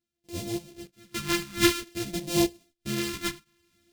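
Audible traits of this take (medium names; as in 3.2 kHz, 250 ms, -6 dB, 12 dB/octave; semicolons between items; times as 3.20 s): a buzz of ramps at a fixed pitch in blocks of 128 samples; phasing stages 2, 0.52 Hz, lowest notch 600–1300 Hz; random-step tremolo 3.5 Hz, depth 95%; a shimmering, thickened sound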